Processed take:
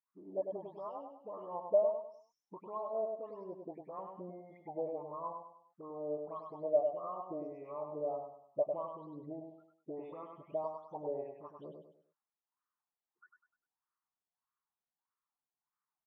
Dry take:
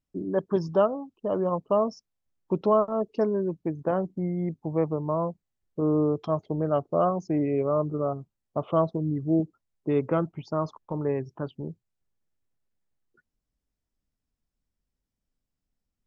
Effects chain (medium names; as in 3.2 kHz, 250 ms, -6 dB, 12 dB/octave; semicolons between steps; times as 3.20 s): delay that grows with frequency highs late, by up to 304 ms; compression 5:1, threshold -28 dBFS, peak gain reduction 10.5 dB; touch-sensitive phaser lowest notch 580 Hz, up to 1.5 kHz, full sweep at -29.5 dBFS; wah-wah 1.6 Hz 590–1200 Hz, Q 7.7; feedback delay 100 ms, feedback 34%, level -5 dB; tape noise reduction on one side only encoder only; trim +7.5 dB